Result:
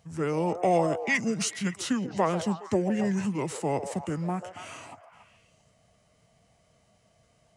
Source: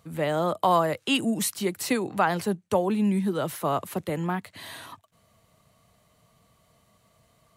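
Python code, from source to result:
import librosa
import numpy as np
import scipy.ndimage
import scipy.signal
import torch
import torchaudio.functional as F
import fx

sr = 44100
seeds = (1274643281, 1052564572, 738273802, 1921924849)

y = fx.echo_stepped(x, sr, ms=140, hz=760.0, octaves=0.7, feedback_pct=70, wet_db=-7)
y = fx.formant_shift(y, sr, semitones=-6)
y = F.gain(torch.from_numpy(y), -2.0).numpy()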